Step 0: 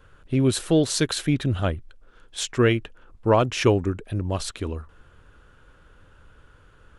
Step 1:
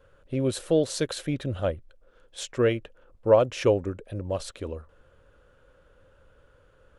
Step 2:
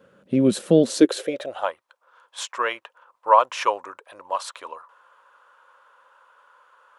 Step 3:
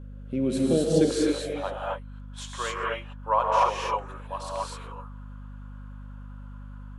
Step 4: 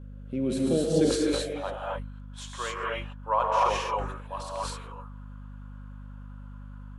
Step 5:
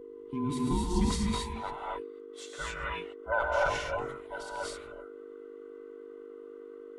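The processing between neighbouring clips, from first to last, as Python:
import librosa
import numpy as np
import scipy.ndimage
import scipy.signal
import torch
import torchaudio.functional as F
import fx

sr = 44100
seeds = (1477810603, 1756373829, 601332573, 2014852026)

y1 = fx.peak_eq(x, sr, hz=540.0, db=13.5, octaves=0.46)
y1 = y1 * librosa.db_to_amplitude(-7.5)
y2 = fx.filter_sweep_highpass(y1, sr, from_hz=200.0, to_hz=1000.0, start_s=0.79, end_s=1.69, q=5.9)
y2 = y2 * librosa.db_to_amplitude(3.5)
y3 = fx.rev_gated(y2, sr, seeds[0], gate_ms=290, shape='rising', drr_db=-4.0)
y3 = fx.add_hum(y3, sr, base_hz=50, snr_db=12)
y3 = y3 * librosa.db_to_amplitude(-9.0)
y4 = fx.sustainer(y3, sr, db_per_s=58.0)
y4 = y4 * librosa.db_to_amplitude(-2.5)
y5 = fx.band_invert(y4, sr, width_hz=500)
y5 = y5 * librosa.db_to_amplitude(-4.0)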